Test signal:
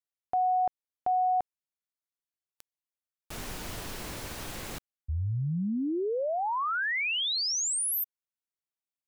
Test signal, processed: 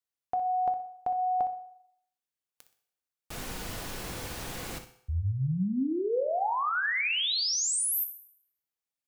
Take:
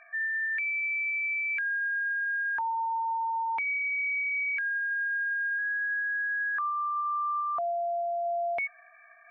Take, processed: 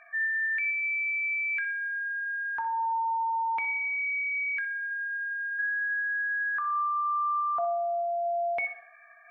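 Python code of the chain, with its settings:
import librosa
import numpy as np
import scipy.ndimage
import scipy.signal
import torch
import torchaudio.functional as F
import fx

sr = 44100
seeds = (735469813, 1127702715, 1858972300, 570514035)

y = fx.room_flutter(x, sr, wall_m=10.6, rt60_s=0.32)
y = fx.rev_fdn(y, sr, rt60_s=0.7, lf_ratio=0.75, hf_ratio=0.9, size_ms=12.0, drr_db=8.0)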